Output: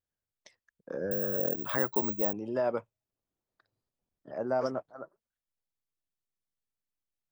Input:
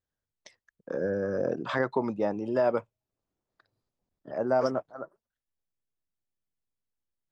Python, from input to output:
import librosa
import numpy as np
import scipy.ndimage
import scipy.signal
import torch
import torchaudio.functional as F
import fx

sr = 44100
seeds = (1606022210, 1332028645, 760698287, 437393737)

y = fx.resample_bad(x, sr, factor=2, down='filtered', up='zero_stuff', at=(1.11, 2.33))
y = F.gain(torch.from_numpy(y), -4.5).numpy()